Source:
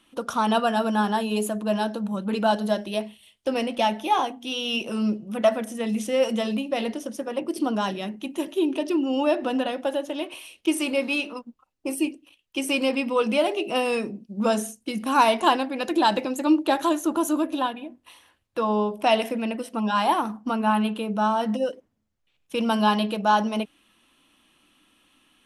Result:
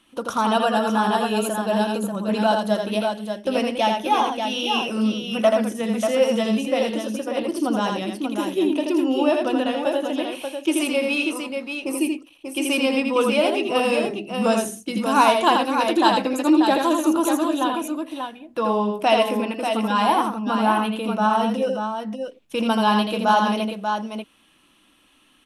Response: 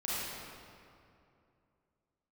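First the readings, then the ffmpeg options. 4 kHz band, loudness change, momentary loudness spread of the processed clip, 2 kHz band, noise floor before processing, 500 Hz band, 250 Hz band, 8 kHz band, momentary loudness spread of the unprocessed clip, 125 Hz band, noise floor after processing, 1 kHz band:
+3.5 dB, +3.0 dB, 8 LU, +3.5 dB, -70 dBFS, +3.5 dB, +3.5 dB, +3.5 dB, 9 LU, no reading, -58 dBFS, +3.5 dB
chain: -af "aecho=1:1:82|588:0.596|0.501,volume=1.19"

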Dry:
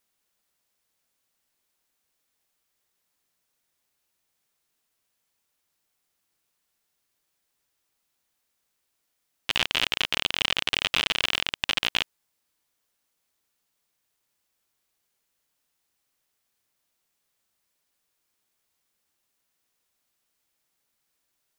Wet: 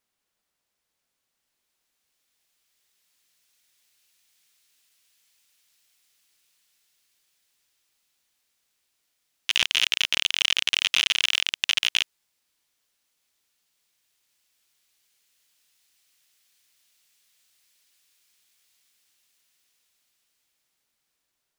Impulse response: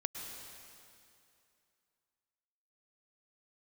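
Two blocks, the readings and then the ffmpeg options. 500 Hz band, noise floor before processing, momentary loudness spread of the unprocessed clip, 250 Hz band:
-9.0 dB, -78 dBFS, 6 LU, no reading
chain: -filter_complex "[0:a]highshelf=f=8800:g=-7,acrossover=split=2000[s0][s1];[s1]dynaudnorm=f=650:g=9:m=6.31[s2];[s0][s2]amix=inputs=2:normalize=0,aeval=exprs='clip(val(0),-1,0.447)':c=same,volume=0.891"

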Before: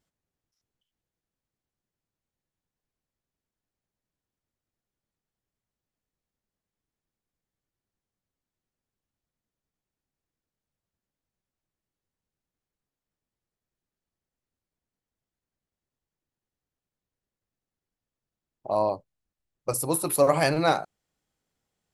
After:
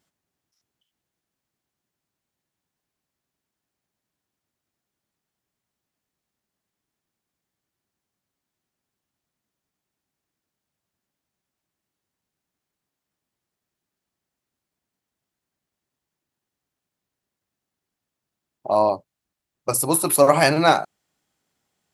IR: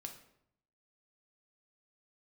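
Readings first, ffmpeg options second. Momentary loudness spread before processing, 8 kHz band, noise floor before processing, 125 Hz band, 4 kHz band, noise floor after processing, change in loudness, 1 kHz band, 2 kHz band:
15 LU, +7.5 dB, under -85 dBFS, +4.0 dB, +7.5 dB, -85 dBFS, +6.0 dB, +7.0 dB, +7.5 dB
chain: -af "highpass=f=170:p=1,equalizer=f=490:w=4.9:g=-5.5,volume=2.37"

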